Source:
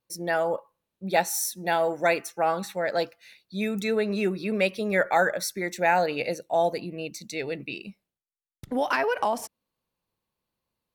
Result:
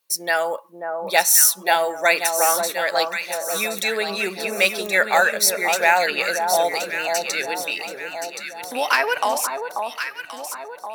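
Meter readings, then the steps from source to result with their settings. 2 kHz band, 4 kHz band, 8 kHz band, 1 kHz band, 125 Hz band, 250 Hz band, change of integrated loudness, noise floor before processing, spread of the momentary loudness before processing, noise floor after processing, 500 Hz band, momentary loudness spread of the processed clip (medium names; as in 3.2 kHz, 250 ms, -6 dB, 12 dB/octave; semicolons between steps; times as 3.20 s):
+9.5 dB, +12.5 dB, +15.0 dB, +6.0 dB, no reading, -5.0 dB, +7.0 dB, under -85 dBFS, 11 LU, -40 dBFS, +3.0 dB, 14 LU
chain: high-pass 620 Hz 6 dB/octave; tilt EQ +2.5 dB/octave; on a send: echo whose repeats swap between lows and highs 537 ms, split 1.2 kHz, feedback 67%, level -4.5 dB; on the sum: trim +7 dB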